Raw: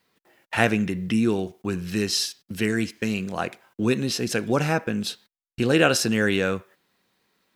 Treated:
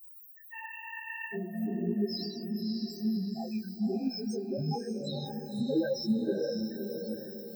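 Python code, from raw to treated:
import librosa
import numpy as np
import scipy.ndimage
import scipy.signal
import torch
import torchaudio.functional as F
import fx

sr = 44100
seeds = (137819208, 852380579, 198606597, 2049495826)

p1 = x + 0.5 * 10.0 ** (-18.5 / 20.0) * np.diff(np.sign(x), prepend=np.sign(x[:1]))
p2 = scipy.signal.sosfilt(scipy.signal.butter(2, 87.0, 'highpass', fs=sr, output='sos'), p1)
p3 = fx.add_hum(p2, sr, base_hz=60, snr_db=35)
p4 = 10.0 ** (-17.0 / 20.0) * (np.abs((p3 / 10.0 ** (-17.0 / 20.0) + 3.0) % 4.0 - 2.0) - 1.0)
p5 = p3 + (p4 * 10.0 ** (-6.5 / 20.0))
p6 = fx.spec_topn(p5, sr, count=1)
p7 = p6 + fx.echo_diffused(p6, sr, ms=551, feedback_pct=47, wet_db=-4.0, dry=0)
p8 = fx.spec_freeze(p7, sr, seeds[0], at_s=0.55, hold_s=0.79)
y = fx.detune_double(p8, sr, cents=34)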